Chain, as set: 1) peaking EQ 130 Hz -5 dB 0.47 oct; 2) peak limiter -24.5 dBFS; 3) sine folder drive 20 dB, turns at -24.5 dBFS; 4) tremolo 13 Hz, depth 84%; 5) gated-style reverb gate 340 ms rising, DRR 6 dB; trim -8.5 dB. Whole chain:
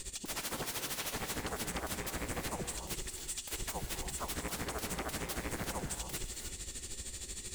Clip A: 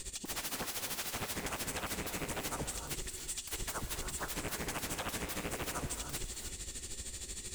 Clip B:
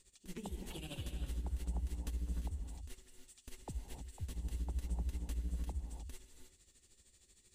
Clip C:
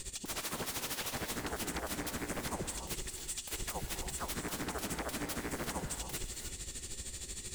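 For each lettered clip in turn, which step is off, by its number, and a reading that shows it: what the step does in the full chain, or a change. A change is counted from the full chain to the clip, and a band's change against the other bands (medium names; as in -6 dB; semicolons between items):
2, mean gain reduction 1.5 dB; 3, 125 Hz band +18.0 dB; 1, 250 Hz band +1.5 dB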